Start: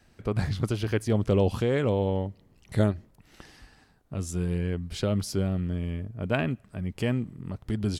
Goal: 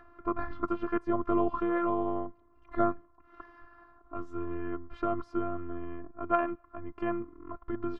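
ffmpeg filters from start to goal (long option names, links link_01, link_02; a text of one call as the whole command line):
ffmpeg -i in.wav -af "afftfilt=real='hypot(re,im)*cos(PI*b)':imag='0':win_size=512:overlap=0.75,lowpass=frequency=1200:width_type=q:width=9.5,acompressor=mode=upward:threshold=-47dB:ratio=2.5" out.wav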